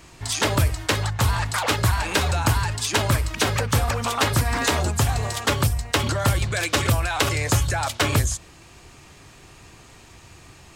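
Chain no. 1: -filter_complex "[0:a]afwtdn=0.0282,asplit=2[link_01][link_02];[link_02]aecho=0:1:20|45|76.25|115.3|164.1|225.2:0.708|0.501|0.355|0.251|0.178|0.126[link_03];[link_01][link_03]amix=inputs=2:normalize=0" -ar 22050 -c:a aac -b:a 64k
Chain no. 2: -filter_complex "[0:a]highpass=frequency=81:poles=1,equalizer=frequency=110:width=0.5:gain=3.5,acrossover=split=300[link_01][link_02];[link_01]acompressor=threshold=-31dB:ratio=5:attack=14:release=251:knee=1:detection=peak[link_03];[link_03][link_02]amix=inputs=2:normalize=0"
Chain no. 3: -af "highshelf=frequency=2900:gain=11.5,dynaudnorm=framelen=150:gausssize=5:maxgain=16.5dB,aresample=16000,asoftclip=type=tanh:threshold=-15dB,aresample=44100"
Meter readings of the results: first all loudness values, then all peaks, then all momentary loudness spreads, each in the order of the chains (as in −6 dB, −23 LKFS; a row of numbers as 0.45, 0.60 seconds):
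−20.0, −24.0, −21.5 LKFS; −4.5, −5.5, −9.5 dBFS; 3, 4, 6 LU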